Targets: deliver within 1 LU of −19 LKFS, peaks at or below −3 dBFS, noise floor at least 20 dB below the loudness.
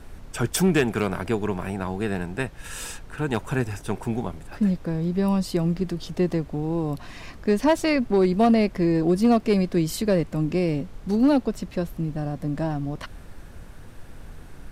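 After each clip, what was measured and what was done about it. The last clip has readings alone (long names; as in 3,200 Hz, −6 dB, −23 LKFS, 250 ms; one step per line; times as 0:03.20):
share of clipped samples 0.3%; peaks flattened at −12.5 dBFS; background noise floor −43 dBFS; target noise floor −45 dBFS; integrated loudness −24.5 LKFS; sample peak −12.5 dBFS; target loudness −19.0 LKFS
→ clipped peaks rebuilt −12.5 dBFS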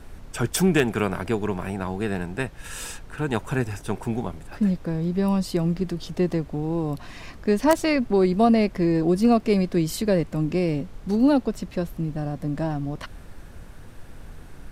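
share of clipped samples 0.0%; background noise floor −43 dBFS; target noise floor −44 dBFS
→ noise reduction from a noise print 6 dB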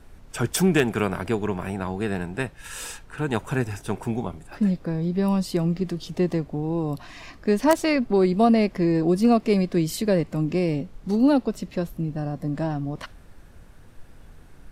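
background noise floor −48 dBFS; integrated loudness −24.0 LKFS; sample peak −3.5 dBFS; target loudness −19.0 LKFS
→ level +5 dB
brickwall limiter −3 dBFS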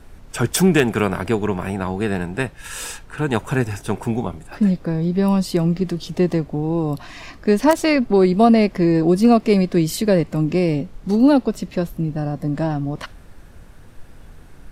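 integrated loudness −19.0 LKFS; sample peak −3.0 dBFS; background noise floor −43 dBFS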